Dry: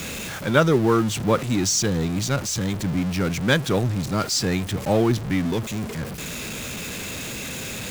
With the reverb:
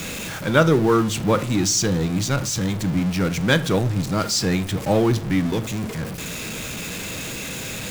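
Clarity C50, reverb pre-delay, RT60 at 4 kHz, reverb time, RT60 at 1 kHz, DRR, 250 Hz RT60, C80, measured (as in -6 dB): 17.5 dB, 6 ms, 0.35 s, 0.50 s, 0.50 s, 11.0 dB, 0.80 s, 21.5 dB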